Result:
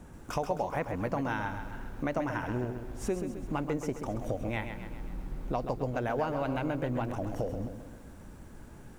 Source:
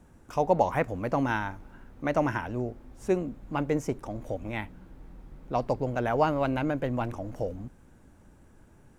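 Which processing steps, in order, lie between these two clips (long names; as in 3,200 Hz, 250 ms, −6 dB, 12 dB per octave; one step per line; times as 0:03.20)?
downward compressor 4 to 1, threshold −38 dBFS, peak gain reduction 17.5 dB
feedback echo at a low word length 132 ms, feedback 55%, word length 11 bits, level −8 dB
level +6.5 dB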